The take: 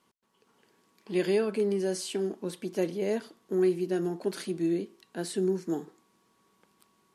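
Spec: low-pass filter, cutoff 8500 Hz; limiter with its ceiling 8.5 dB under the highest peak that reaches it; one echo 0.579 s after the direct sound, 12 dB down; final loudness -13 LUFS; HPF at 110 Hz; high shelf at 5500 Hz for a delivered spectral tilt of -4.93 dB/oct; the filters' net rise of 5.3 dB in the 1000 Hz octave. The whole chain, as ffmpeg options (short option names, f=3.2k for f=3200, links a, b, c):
-af "highpass=110,lowpass=8.5k,equalizer=f=1k:t=o:g=7.5,highshelf=f=5.5k:g=5.5,alimiter=limit=-23dB:level=0:latency=1,aecho=1:1:579:0.251,volume=20dB"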